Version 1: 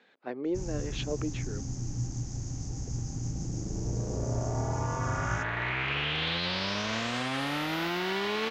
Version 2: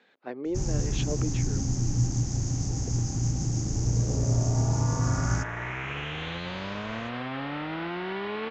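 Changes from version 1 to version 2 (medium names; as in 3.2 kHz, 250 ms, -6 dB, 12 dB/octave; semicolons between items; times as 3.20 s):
first sound +8.0 dB; second sound: add distance through air 380 m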